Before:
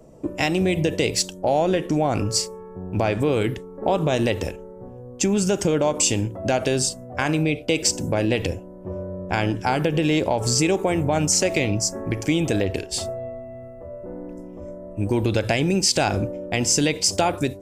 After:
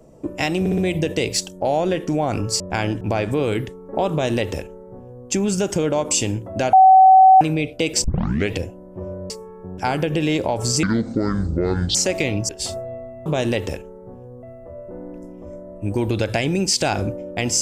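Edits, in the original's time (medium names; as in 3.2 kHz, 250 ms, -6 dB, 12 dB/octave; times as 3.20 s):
0.60 s: stutter 0.06 s, 4 plays
2.42–2.90 s: swap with 9.19–9.60 s
4.00–5.17 s: copy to 13.58 s
6.62–7.30 s: bleep 759 Hz -6 dBFS
7.93 s: tape start 0.48 s
10.65–11.31 s: speed 59%
11.85–12.81 s: delete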